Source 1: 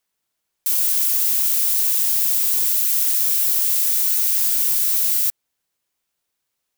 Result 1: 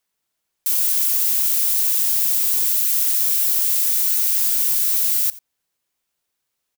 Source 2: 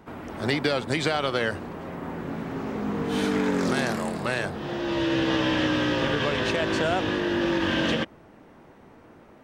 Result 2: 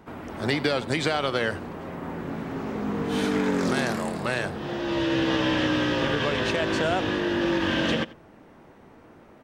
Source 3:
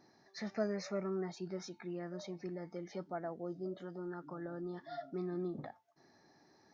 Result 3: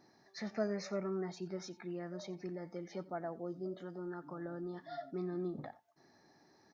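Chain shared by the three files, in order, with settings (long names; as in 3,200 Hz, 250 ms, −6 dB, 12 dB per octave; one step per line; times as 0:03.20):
single-tap delay 88 ms −20 dB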